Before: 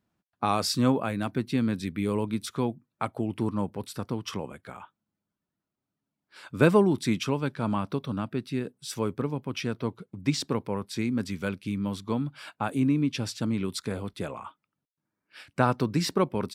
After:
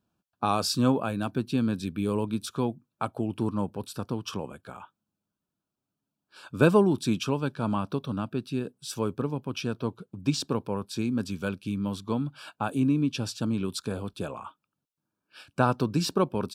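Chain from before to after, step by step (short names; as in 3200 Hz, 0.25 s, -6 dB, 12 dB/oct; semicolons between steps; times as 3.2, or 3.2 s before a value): Butterworth band-stop 2000 Hz, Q 3.1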